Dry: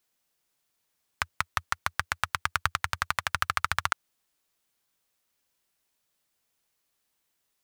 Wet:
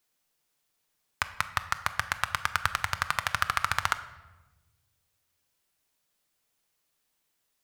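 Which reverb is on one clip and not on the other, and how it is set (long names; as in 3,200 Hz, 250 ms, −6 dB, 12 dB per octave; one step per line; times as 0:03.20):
rectangular room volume 620 cubic metres, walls mixed, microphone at 0.43 metres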